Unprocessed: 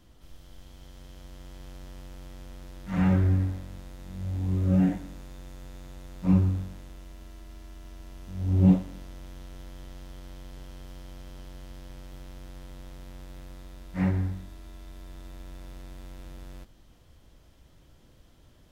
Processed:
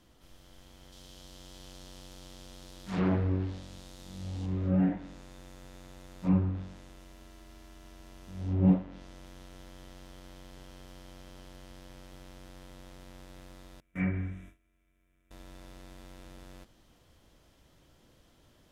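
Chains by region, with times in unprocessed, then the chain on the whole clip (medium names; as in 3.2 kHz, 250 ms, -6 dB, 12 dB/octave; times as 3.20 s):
0.92–4.46 s: resonant high shelf 2.8 kHz +6 dB, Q 1.5 + loudspeaker Doppler distortion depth 0.99 ms
13.80–15.31 s: gate with hold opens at -33 dBFS, closes at -36 dBFS + static phaser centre 1.9 kHz, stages 4 + small resonant body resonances 730/2300 Hz, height 17 dB, ringing for 50 ms
whole clip: bass shelf 130 Hz -9 dB; low-pass that closes with the level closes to 2.2 kHz, closed at -24 dBFS; trim -1 dB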